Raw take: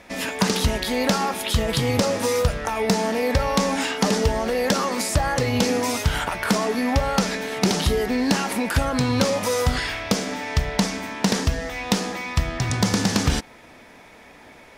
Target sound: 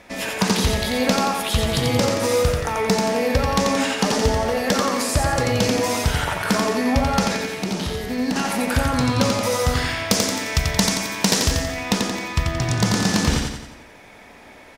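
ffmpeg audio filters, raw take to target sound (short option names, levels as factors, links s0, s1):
-filter_complex "[0:a]asettb=1/sr,asplit=3[s0][s1][s2];[s0]atrim=end=7.384[s3];[s1]atrim=start=7.38:end=8.36,asetpts=PTS-STARTPTS,afade=t=in:d=0.004:c=qsin,afade=t=out:st=0.976:d=0.004:c=qsin,acrossover=split=290|4200[s4][s5][s6];[s4]acompressor=threshold=0.0447:ratio=4[s7];[s5]acompressor=threshold=0.0316:ratio=4[s8];[s6]acompressor=threshold=0.0112:ratio=4[s9];[s7][s8][s9]amix=inputs=3:normalize=0[s10];[s2]atrim=start=8.356[s11];[s3][s10]acrossfade=d=0.004:c1=hsin:c2=qsin[s12];[s12][s11]acrossfade=d=0.004:c1=qsin:c2=hsin,asettb=1/sr,asplit=3[s13][s14][s15];[s13]atrim=end=10.104[s16];[s14]atrim=start=10.1:end=11.64,asetpts=PTS-STARTPTS,afade=t=in:d=0.004:c=qsin,afade=t=out:st=1.536:d=0.004:c=qsin,highshelf=f=4200:g=10[s17];[s15]atrim=start=11.636[s18];[s16][s17]acrossfade=d=0.004:c1=hsin:c2=qsin[s19];[s19][s18]acrossfade=d=0.004:c1=qsin:c2=hsin,aecho=1:1:88|176|264|352|440|528:0.668|0.327|0.16|0.0786|0.0385|0.0189"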